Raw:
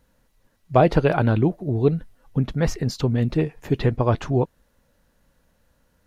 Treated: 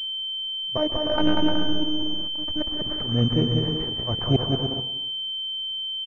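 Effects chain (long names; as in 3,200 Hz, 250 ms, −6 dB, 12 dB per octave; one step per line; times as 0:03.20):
volume swells 236 ms
amplitude tremolo 1.6 Hz, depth 52%
0:00.77–0:02.67: phases set to zero 305 Hz
on a send: bouncing-ball delay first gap 190 ms, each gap 0.6×, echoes 5
on the sum: dense smooth reverb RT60 0.75 s, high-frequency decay 0.8×, pre-delay 120 ms, DRR 10 dB
in parallel at −5.5 dB: centre clipping without the shift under −32.5 dBFS
on the sum: switching amplifier with a slow clock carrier 3,100 Hz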